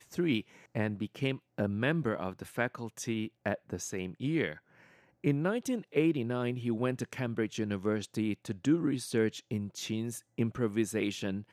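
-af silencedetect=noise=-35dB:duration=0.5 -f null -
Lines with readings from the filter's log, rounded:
silence_start: 4.53
silence_end: 5.24 | silence_duration: 0.72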